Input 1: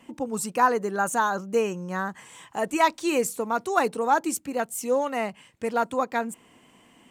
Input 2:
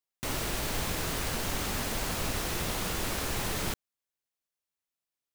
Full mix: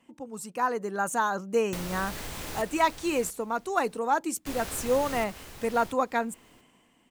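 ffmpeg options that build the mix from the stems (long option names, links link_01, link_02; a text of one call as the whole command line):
ffmpeg -i stem1.wav -i stem2.wav -filter_complex "[0:a]dynaudnorm=framelen=160:gausssize=9:maxgain=11.5dB,volume=-10.5dB[link_01];[1:a]acompressor=threshold=-36dB:ratio=6,adelay=1500,volume=1.5dB,asplit=3[link_02][link_03][link_04];[link_02]atrim=end=2.62,asetpts=PTS-STARTPTS,afade=type=out:start_time=2.616:duration=0.004:curve=hsin[link_05];[link_03]atrim=start=2.62:end=4.46,asetpts=PTS-STARTPTS,volume=0[link_06];[link_04]atrim=start=4.46,asetpts=PTS-STARTPTS,afade=type=in:duration=0.004:curve=hsin[link_07];[link_05][link_06][link_07]concat=n=3:v=0:a=1,asplit=2[link_08][link_09];[link_09]volume=-8dB,aecho=0:1:686|1372|2058:1|0.15|0.0225[link_10];[link_01][link_08][link_10]amix=inputs=3:normalize=0" out.wav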